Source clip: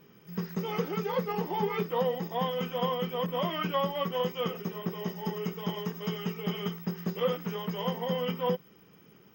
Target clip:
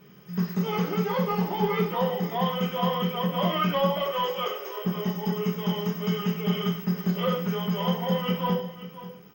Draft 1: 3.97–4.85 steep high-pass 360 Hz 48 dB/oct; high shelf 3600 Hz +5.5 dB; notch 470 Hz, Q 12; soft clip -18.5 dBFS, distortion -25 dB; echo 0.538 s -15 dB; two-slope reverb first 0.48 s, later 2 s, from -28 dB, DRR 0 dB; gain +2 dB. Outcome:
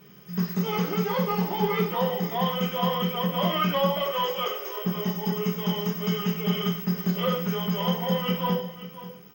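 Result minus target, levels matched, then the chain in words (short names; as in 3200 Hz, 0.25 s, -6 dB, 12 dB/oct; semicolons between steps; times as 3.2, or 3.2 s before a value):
8000 Hz band +3.5 dB
3.97–4.85 steep high-pass 360 Hz 48 dB/oct; notch 470 Hz, Q 12; soft clip -18.5 dBFS, distortion -25 dB; echo 0.538 s -15 dB; two-slope reverb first 0.48 s, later 2 s, from -28 dB, DRR 0 dB; gain +2 dB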